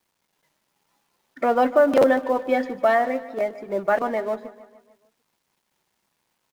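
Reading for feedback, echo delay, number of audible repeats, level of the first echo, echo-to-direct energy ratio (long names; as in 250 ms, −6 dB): 54%, 149 ms, 4, −17.0 dB, −15.5 dB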